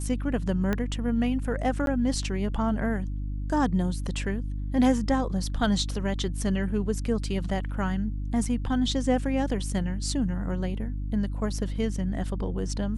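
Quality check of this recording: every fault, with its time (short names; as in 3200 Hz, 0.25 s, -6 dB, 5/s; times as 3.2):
hum 50 Hz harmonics 6 -31 dBFS
0.73 pop -14 dBFS
1.86–1.87 gap 12 ms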